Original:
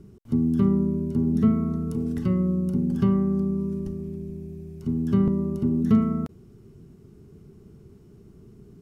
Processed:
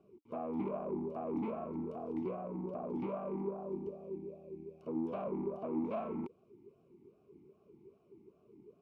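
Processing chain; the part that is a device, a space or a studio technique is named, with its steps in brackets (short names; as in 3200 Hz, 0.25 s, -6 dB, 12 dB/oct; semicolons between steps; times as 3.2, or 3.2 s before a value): talk box (tube stage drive 28 dB, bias 0.75; vowel sweep a-u 2.5 Hz); gain +7.5 dB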